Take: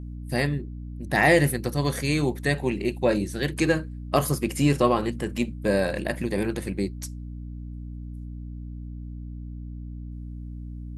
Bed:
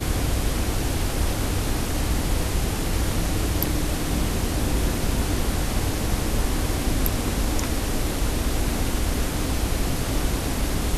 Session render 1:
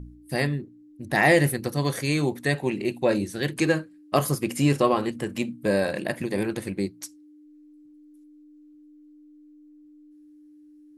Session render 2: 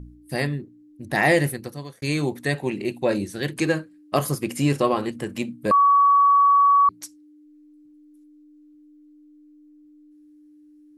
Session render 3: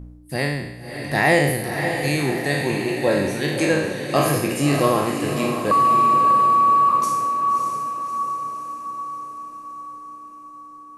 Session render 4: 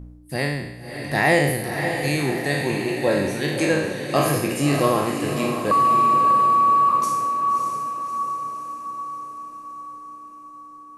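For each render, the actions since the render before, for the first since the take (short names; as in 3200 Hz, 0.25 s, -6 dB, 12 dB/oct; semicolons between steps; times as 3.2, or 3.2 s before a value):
de-hum 60 Hz, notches 4
1.35–2.02 fade out; 5.71–6.89 bleep 1130 Hz -12.5 dBFS
spectral trails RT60 0.92 s; diffused feedback echo 0.603 s, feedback 56%, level -6.5 dB
gain -1 dB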